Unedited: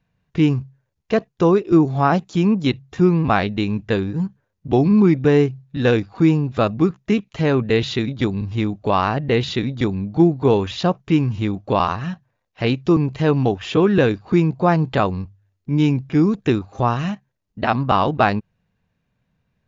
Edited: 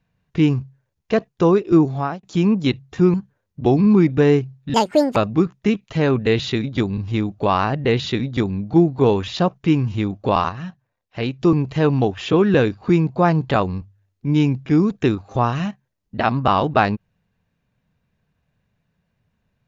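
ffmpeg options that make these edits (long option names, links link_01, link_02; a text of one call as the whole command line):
ffmpeg -i in.wav -filter_complex "[0:a]asplit=7[link_01][link_02][link_03][link_04][link_05][link_06][link_07];[link_01]atrim=end=2.23,asetpts=PTS-STARTPTS,afade=type=out:start_time=1.84:duration=0.39[link_08];[link_02]atrim=start=2.23:end=3.142,asetpts=PTS-STARTPTS,afade=type=in:duration=0.004:curve=hsin[link_09];[link_03]atrim=start=4.208:end=5.814[link_10];[link_04]atrim=start=5.81:end=6.6,asetpts=PTS-STARTPTS,asetrate=82467,aresample=44100,atrim=end_sample=18630,asetpts=PTS-STARTPTS[link_11];[link_05]atrim=start=6.596:end=11.932[link_12];[link_06]atrim=start=11.928:end=12.832,asetpts=PTS-STARTPTS,volume=-4.5dB[link_13];[link_07]atrim=start=12.828[link_14];[link_08][link_09]concat=n=2:v=0:a=1[link_15];[link_15][link_10]acrossfade=duration=0.004:curve1=hsin:curve2=hsin[link_16];[link_16][link_11]acrossfade=duration=0.004:curve1=hsin:curve2=hsin[link_17];[link_17][link_12]acrossfade=duration=0.004:curve1=hsin:curve2=hsin[link_18];[link_18][link_13]acrossfade=duration=0.004:curve1=hsin:curve2=hsin[link_19];[link_19][link_14]acrossfade=duration=0.004:curve1=hsin:curve2=hsin" out.wav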